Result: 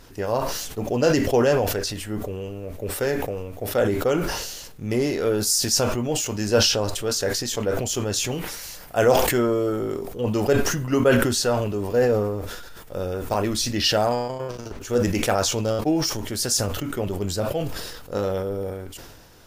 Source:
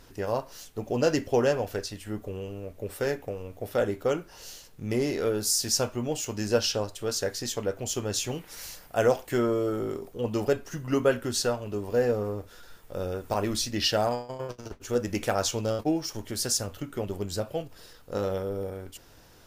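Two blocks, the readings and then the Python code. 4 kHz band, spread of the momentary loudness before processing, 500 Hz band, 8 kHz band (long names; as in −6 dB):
+6.5 dB, 13 LU, +5.0 dB, +6.0 dB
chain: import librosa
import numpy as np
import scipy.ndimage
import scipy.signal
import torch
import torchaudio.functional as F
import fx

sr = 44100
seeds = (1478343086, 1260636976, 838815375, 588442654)

y = fx.sustainer(x, sr, db_per_s=38.0)
y = F.gain(torch.from_numpy(y), 4.0).numpy()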